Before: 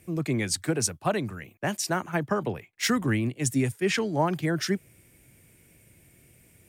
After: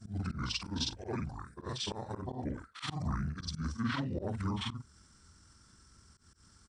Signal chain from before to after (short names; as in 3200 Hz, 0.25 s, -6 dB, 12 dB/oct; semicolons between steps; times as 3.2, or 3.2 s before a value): short-time reversal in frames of 0.115 s; in parallel at +3 dB: compressor, threshold -37 dBFS, peak gain reduction 13.5 dB; on the sum: pitch shift -8.5 st; auto swell 0.102 s; gain -7.5 dB